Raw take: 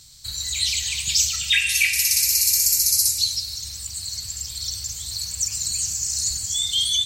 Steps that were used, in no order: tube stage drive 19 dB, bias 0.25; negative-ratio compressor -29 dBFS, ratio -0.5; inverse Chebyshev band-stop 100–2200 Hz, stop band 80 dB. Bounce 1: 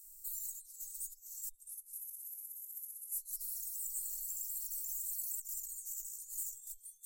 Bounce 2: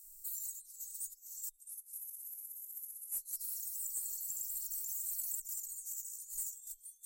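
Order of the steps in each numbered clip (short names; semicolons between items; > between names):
negative-ratio compressor > tube stage > inverse Chebyshev band-stop; negative-ratio compressor > inverse Chebyshev band-stop > tube stage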